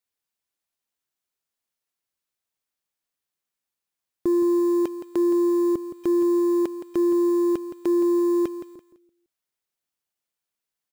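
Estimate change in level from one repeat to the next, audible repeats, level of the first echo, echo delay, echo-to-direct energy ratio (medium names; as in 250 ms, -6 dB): -11.0 dB, 3, -11.0 dB, 168 ms, -10.5 dB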